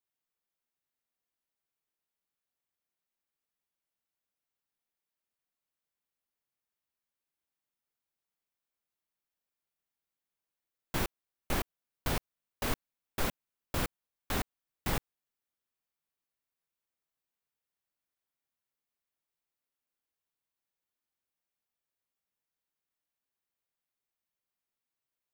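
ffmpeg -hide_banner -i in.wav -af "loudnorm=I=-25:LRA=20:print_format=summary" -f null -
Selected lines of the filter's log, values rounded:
Input Integrated:    -37.3 LUFS
Input True Peak:     -17.6 dBTP
Input LRA:             4.7 LU
Input Threshold:     -47.3 LUFS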